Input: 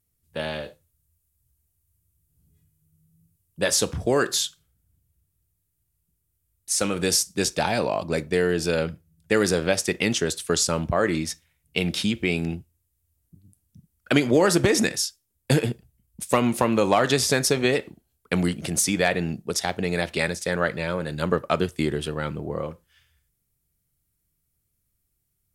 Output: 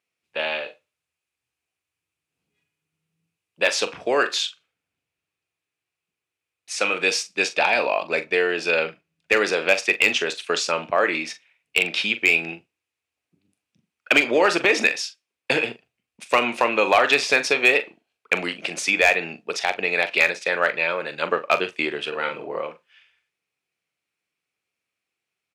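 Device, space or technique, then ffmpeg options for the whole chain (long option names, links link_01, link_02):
megaphone: -filter_complex "[0:a]asettb=1/sr,asplit=3[link_01][link_02][link_03];[link_01]atrim=end=22.084[link_04];[link_02]atrim=start=22.08:end=22.6,asetpts=PTS-STARTPTS,afade=type=in:duration=0.004:curve=qsin,afade=type=out:start_time=0.516:duration=0.004:curve=qsin,asplit=2[link_05][link_06];[link_06]adelay=44,volume=-4.5dB[link_07];[link_05][link_07]amix=inputs=2:normalize=0,atrim=end_sample=22932[link_08];[link_03]atrim=start=22.596[link_09];[link_04][link_08]acrossfade=duration=0.004:curve1=hsin:curve2=qsin[link_10];[link_10][link_09]acrossfade=duration=0.004:curve1=qsin:curve2=hsin,highpass=510,lowpass=3900,equalizer=frequency=2500:width_type=o:width=0.35:gain=11,asoftclip=type=hard:threshold=-11.5dB,asplit=2[link_11][link_12];[link_12]adelay=42,volume=-12dB[link_13];[link_11][link_13]amix=inputs=2:normalize=0,volume=4dB"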